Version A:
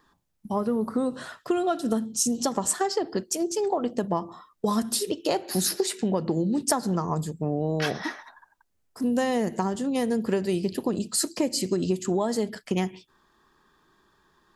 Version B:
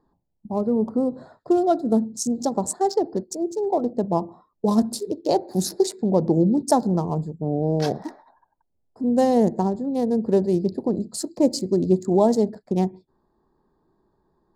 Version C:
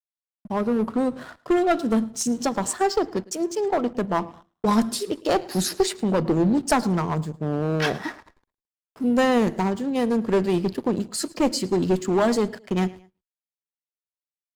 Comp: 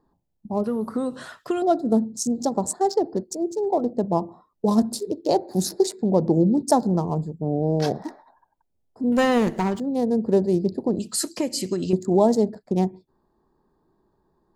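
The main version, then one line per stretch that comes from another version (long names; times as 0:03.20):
B
0:00.64–0:01.62: punch in from A
0:09.12–0:09.80: punch in from C
0:10.99–0:11.93: punch in from A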